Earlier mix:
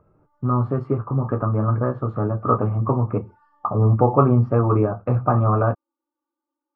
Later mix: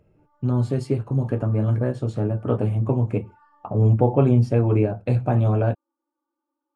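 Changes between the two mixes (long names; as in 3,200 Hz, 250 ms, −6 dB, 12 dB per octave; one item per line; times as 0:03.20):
speech: remove low-pass with resonance 1,200 Hz, resonance Q 12
background +3.0 dB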